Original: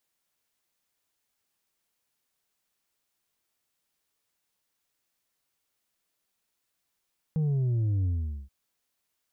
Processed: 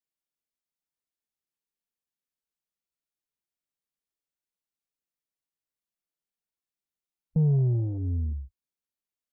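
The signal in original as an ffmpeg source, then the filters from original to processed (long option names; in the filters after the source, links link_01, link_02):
-f lavfi -i "aevalsrc='0.0631*clip((1.13-t)/0.44,0,1)*tanh(1.58*sin(2*PI*160*1.13/log(65/160)*(exp(log(65/160)*t/1.13)-1)))/tanh(1.58)':duration=1.13:sample_rate=44100"
-filter_complex "[0:a]afwtdn=0.0126,equalizer=frequency=100:width=4.2:gain=-13,asplit=2[link_01][link_02];[link_02]adynamicsmooth=sensitivity=2:basefreq=590,volume=1dB[link_03];[link_01][link_03]amix=inputs=2:normalize=0"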